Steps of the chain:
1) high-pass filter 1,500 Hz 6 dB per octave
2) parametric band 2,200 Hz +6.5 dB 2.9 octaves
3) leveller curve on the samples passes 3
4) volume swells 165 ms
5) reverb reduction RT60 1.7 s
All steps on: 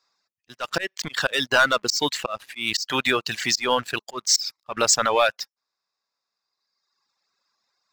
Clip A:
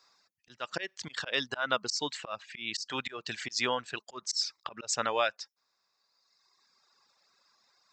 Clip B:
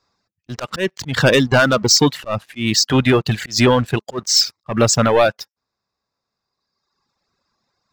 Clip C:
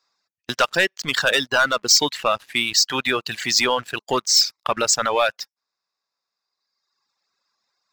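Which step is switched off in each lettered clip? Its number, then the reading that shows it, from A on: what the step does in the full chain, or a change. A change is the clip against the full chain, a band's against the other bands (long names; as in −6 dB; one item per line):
3, change in crest factor +7.0 dB
1, 125 Hz band +16.5 dB
4, change in crest factor −2.0 dB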